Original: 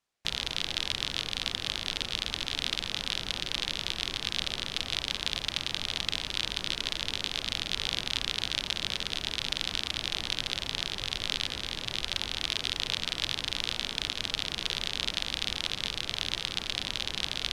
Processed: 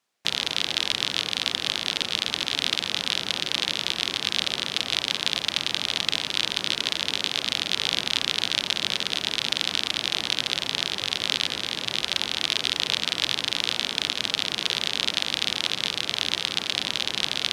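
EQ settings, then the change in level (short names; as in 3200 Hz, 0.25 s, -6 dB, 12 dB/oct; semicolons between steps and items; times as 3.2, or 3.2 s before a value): HPF 160 Hz 12 dB/oct; +6.5 dB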